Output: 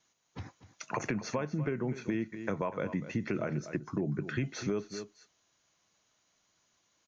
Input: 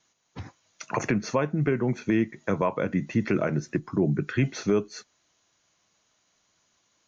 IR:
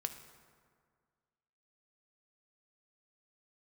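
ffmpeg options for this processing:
-af "aecho=1:1:244:0.178,acompressor=threshold=-26dB:ratio=3,volume=-4dB"

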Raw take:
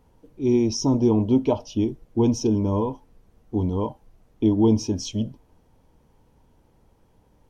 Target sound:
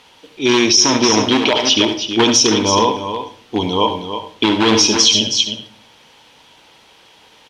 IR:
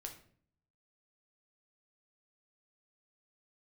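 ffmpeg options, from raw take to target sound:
-filter_complex "[0:a]asoftclip=type=hard:threshold=-15dB,bandpass=f=3.3k:t=q:w=2:csg=0,aecho=1:1:320:0.335,asplit=2[a][b];[1:a]atrim=start_sample=2205,adelay=72[c];[b][c]afir=irnorm=-1:irlink=0,volume=-6dB[d];[a][d]amix=inputs=2:normalize=0,alimiter=level_in=33.5dB:limit=-1dB:release=50:level=0:latency=1,volume=-1dB"

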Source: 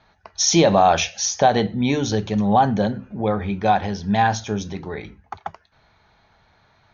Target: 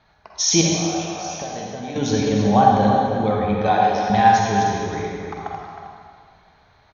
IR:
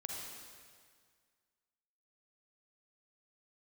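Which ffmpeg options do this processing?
-filter_complex "[0:a]asplit=2[a][b];[b]adelay=314.9,volume=-7dB,highshelf=f=4k:g=-7.08[c];[a][c]amix=inputs=2:normalize=0,asettb=1/sr,asplit=3[d][e][f];[d]atrim=end=0.614[g];[e]atrim=start=0.61:end=1.96,asetpts=PTS-STARTPTS,afade=t=in:d=0.004:c=qsin,afade=t=out:st=1.346:d=0.004:c=qsin,acompressor=threshold=-30dB:ratio=6[h];[f]atrim=start=1.956[i];[g][h]acrossfade=d=0.004:c1=hsin:c2=qsin[j];[j][i]acrossfade=d=0.004:c1=qsin:c2=hsin,asettb=1/sr,asplit=3[k][l][m];[k]atrim=end=3.704[n];[l]atrim=start=3.7:end=4.1,asetpts=PTS-STARTPTS,afade=t=in:d=0.004:c=qsin,afade=t=out:st=0.396:d=0.004:c=qsin,highpass=f=280:w=0.5412,highpass=f=280:w=1.3066[o];[m]atrim=start=4.096[p];[n][o]acrossfade=d=0.004:c1=hsin:c2=qsin[q];[q][p]acrossfade=d=0.004:c1=qsin:c2=hsin[r];[1:a]atrim=start_sample=2205[s];[r][s]afir=irnorm=-1:irlink=0,volume=2.5dB"

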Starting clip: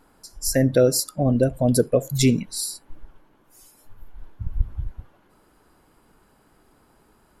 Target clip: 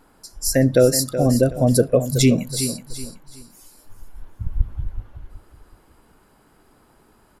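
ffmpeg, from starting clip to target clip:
-af "aecho=1:1:374|748|1122:0.282|0.0874|0.0271,volume=2.5dB"

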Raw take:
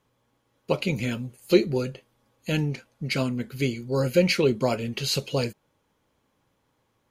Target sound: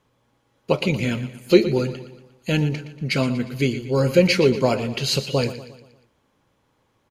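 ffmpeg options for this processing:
-af "highshelf=f=11k:g=-8.5,aecho=1:1:118|236|354|472|590:0.224|0.107|0.0516|0.0248|0.0119,volume=4.5dB"

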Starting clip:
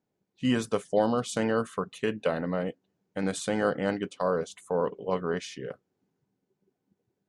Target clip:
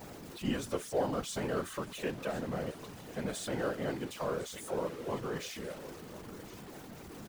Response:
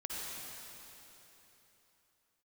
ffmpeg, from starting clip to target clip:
-af "aeval=exprs='val(0)+0.5*0.0237*sgn(val(0))':c=same,aecho=1:1:1051:0.158,afftfilt=real='hypot(re,im)*cos(2*PI*random(0))':imag='hypot(re,im)*sin(2*PI*random(1))':win_size=512:overlap=0.75,volume=-3dB"

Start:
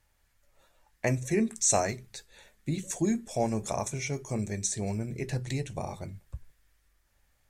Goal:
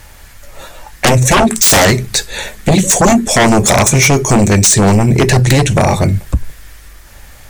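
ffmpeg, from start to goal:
-filter_complex "[0:a]asplit=2[a][b];[b]acompressor=threshold=-41dB:ratio=6,volume=1.5dB[c];[a][c]amix=inputs=2:normalize=0,aeval=exprs='0.299*sin(PI/2*6.31*val(0)/0.299)':c=same,volume=6dB"

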